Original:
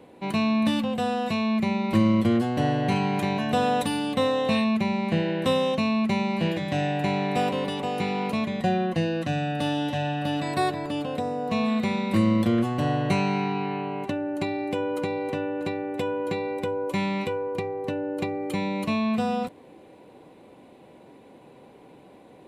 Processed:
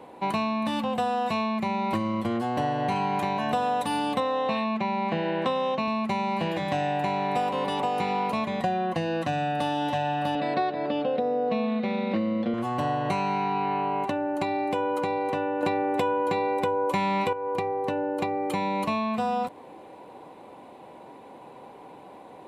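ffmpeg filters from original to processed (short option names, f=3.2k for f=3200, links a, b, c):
-filter_complex "[0:a]asettb=1/sr,asplit=3[a][b][c];[a]atrim=end=4.204[d];[b]atrim=start=4.2:end=5.88,asetpts=PTS-STARTPTS,afade=t=in:d=0.004:c=qsin,afade=t=out:st=1.676:d=0.004:c=qsin,highpass=140,lowpass=4.6k[e];[c]atrim=start=5.876[f];[d][e]acrossfade=d=0.004:c1=hsin:c2=qsin[g];[g][f]acrossfade=d=0.004:c1=qsin:c2=hsin,asettb=1/sr,asplit=3[h][i][j];[h]atrim=end=10.354[k];[i]atrim=start=10.35:end=12.54,asetpts=PTS-STARTPTS,afade=t=in:d=0.004:c=qsin,afade=t=out:st=2.186:d=0.004:c=qsin,highpass=150,equalizer=f=230:t=q:w=4:g=7,equalizer=f=510:t=q:w=4:g=9,equalizer=f=1k:t=q:w=4:g=-10,lowpass=f=4.4k:w=0.5412,lowpass=f=4.4k:w=1.3066[l];[j]atrim=start=12.536[m];[k][l]acrossfade=d=0.004:c1=hsin:c2=qsin[n];[n][m]acrossfade=d=0.004:c1=qsin:c2=hsin,asplit=3[o][p][q];[o]atrim=end=15.632[r];[p]atrim=start=15.628:end=17.332,asetpts=PTS-STARTPTS,volume=9.5dB[s];[q]atrim=start=17.328[t];[r][s]acrossfade=d=0.004:c1=hsin:c2=hsin[u];[u][t]acrossfade=d=0.004:c1=hsin:c2=hsin,equalizer=f=910:w=1.4:g=9.5,acompressor=threshold=-24dB:ratio=6,lowshelf=f=240:g=-4,volume=1.5dB"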